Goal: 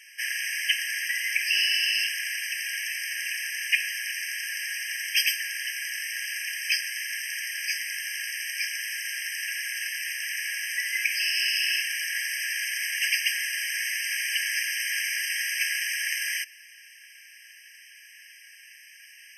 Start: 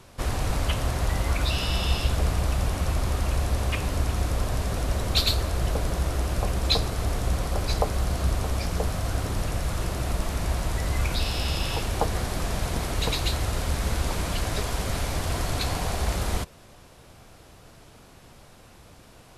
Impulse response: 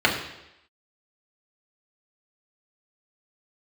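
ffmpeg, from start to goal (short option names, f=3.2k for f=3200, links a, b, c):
-af "acontrast=36,highpass=f=1.2k:t=q:w=8.9,afftfilt=real='re*eq(mod(floor(b*sr/1024/1600),2),1)':imag='im*eq(mod(floor(b*sr/1024/1600),2),1)':win_size=1024:overlap=0.75,volume=3dB"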